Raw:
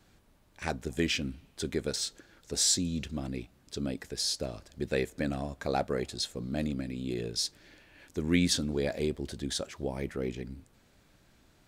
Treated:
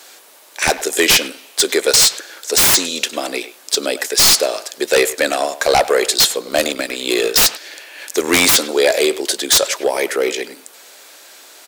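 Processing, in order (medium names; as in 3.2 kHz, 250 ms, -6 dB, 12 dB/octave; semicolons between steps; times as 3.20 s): high-pass 420 Hz 24 dB/octave; treble shelf 3.9 kHz +11.5 dB; 6.42–8.55 s: waveshaping leveller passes 1; sine folder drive 19 dB, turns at -4.5 dBFS; speakerphone echo 100 ms, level -13 dB; trim -2 dB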